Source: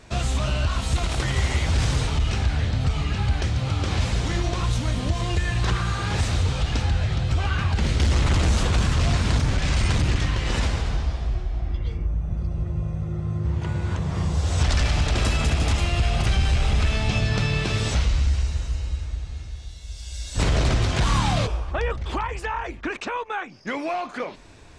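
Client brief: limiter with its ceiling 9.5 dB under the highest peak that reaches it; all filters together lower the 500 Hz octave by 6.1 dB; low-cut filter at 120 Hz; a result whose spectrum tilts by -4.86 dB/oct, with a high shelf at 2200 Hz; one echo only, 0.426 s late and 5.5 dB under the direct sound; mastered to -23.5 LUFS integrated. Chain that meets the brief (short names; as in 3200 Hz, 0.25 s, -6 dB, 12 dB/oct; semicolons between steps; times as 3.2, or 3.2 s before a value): HPF 120 Hz; bell 500 Hz -8 dB; high shelf 2200 Hz -4 dB; limiter -22 dBFS; echo 0.426 s -5.5 dB; gain +7.5 dB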